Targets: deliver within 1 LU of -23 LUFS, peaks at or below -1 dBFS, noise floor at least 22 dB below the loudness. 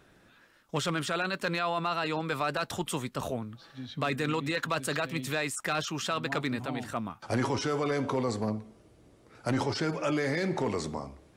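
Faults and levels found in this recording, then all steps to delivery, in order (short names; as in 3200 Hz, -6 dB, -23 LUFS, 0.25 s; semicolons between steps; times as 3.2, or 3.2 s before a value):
clipped 0.3%; flat tops at -20.5 dBFS; loudness -31.5 LUFS; peak -20.5 dBFS; loudness target -23.0 LUFS
-> clip repair -20.5 dBFS; gain +8.5 dB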